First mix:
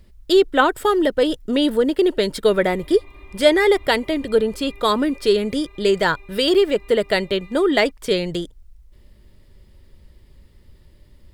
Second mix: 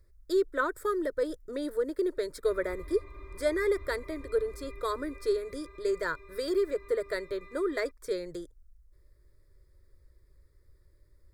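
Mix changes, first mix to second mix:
speech -11.0 dB; master: add fixed phaser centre 790 Hz, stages 6

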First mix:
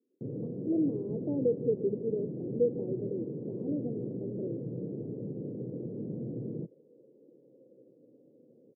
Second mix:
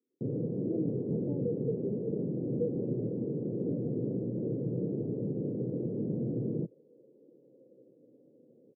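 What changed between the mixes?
speech -3.0 dB; first sound +4.5 dB; reverb: off

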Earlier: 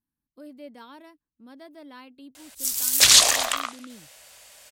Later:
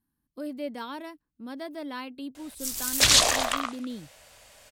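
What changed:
speech +8.5 dB; background: add tilt -2 dB/oct

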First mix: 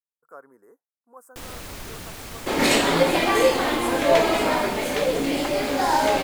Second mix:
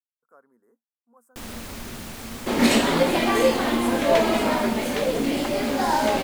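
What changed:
speech -11.0 dB; second sound: send -7.0 dB; master: add bell 230 Hz +14 dB 0.2 oct

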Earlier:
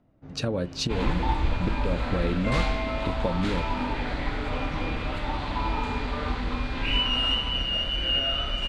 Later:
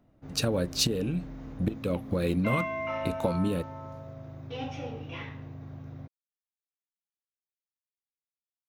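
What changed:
second sound: muted; master: remove air absorption 99 m

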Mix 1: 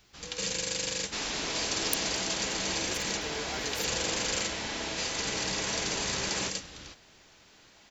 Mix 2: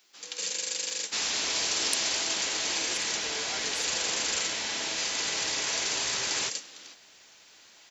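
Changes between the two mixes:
speech: add LPF 8100 Hz 24 dB/oct; first sound: add ladder high-pass 200 Hz, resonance 20%; master: add tilt +2.5 dB/oct

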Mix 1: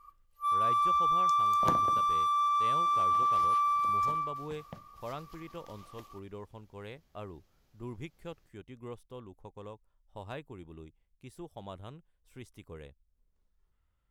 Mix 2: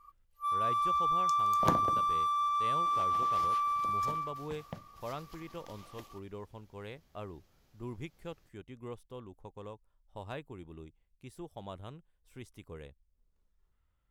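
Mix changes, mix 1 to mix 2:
second sound +3.5 dB; reverb: off

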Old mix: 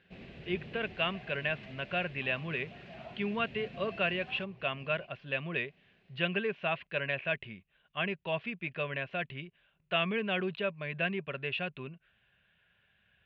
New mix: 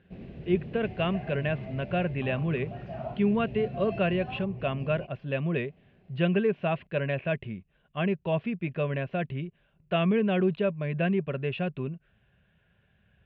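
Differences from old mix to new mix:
speech +3.5 dB; second sound +9.5 dB; master: add tilt shelf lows +8.5 dB, about 850 Hz

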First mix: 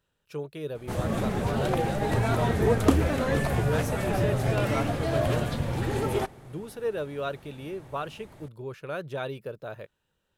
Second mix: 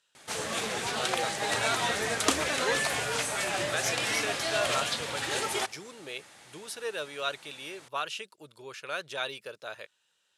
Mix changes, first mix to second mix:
background: entry -0.60 s; master: add weighting filter ITU-R 468

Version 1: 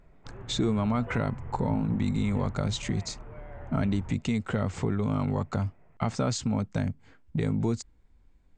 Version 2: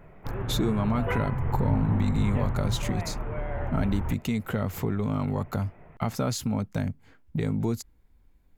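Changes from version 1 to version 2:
background +11.5 dB; master: remove brick-wall FIR low-pass 8900 Hz

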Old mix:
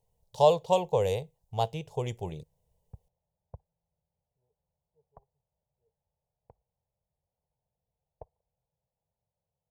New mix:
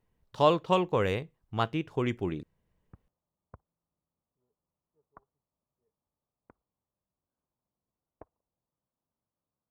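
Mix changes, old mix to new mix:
background: add low shelf 230 Hz -8.5 dB; master: remove EQ curve 150 Hz 0 dB, 300 Hz -19 dB, 460 Hz +3 dB, 870 Hz +4 dB, 1300 Hz -20 dB, 3300 Hz -1 dB, 7100 Hz +9 dB

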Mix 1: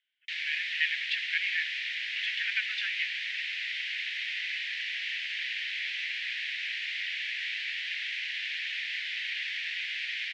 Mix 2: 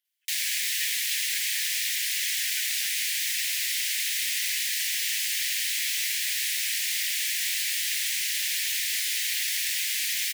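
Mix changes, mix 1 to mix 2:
speech -10.0 dB; master: remove LPF 3100 Hz 24 dB/oct

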